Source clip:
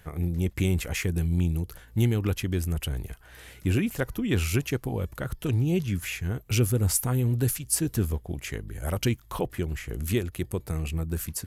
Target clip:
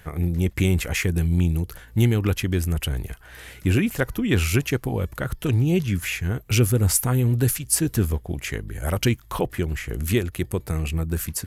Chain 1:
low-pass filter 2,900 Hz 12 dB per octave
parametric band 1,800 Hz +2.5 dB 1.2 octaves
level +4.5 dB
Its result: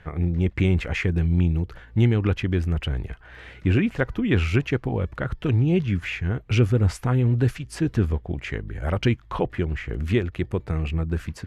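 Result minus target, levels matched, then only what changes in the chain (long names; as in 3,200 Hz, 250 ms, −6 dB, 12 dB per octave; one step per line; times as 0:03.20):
4,000 Hz band −4.0 dB
remove: low-pass filter 2,900 Hz 12 dB per octave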